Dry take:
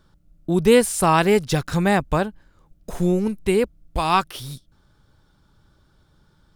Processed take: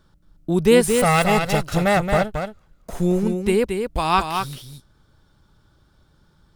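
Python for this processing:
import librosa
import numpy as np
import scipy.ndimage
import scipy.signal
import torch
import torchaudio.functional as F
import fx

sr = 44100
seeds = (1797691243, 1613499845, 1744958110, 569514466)

y = fx.lower_of_two(x, sr, delay_ms=1.5, at=(0.89, 2.93))
y = y + 10.0 ** (-6.0 / 20.0) * np.pad(y, (int(224 * sr / 1000.0), 0))[:len(y)]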